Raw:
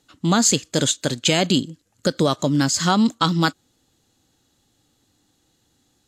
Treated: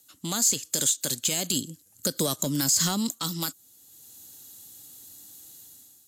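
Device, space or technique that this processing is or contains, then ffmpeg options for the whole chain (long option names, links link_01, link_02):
FM broadcast chain: -filter_complex "[0:a]highpass=62,dynaudnorm=framelen=140:gausssize=7:maxgain=11.5dB,acrossover=split=440|6400[link_01][link_02][link_03];[link_01]acompressor=threshold=-24dB:ratio=4[link_04];[link_02]acompressor=threshold=-23dB:ratio=4[link_05];[link_03]acompressor=threshold=-31dB:ratio=4[link_06];[link_04][link_05][link_06]amix=inputs=3:normalize=0,aemphasis=mode=production:type=50fm,alimiter=limit=-10.5dB:level=0:latency=1:release=18,asoftclip=type=hard:threshold=-14dB,lowpass=frequency=15000:width=0.5412,lowpass=frequency=15000:width=1.3066,aemphasis=mode=production:type=50fm,asettb=1/sr,asplit=3[link_07][link_08][link_09];[link_07]atrim=end=1.534[link_10];[link_08]atrim=start=1.53:end=3.11,asetpts=PTS-STARTPTS,afade=type=in:duration=0.004:curve=qsin,afade=type=out:start_time=1.576:duration=0.004:curve=qsin,lowshelf=frequency=480:gain=6[link_11];[link_09]atrim=start=3.106[link_12];[link_10][link_11]acrossfade=duration=0.004:curve1=hsin:curve2=qsin[link_13];[link_13][link_12]acrossfade=duration=0.004:curve1=qsin:curve2=hsin,volume=-8.5dB"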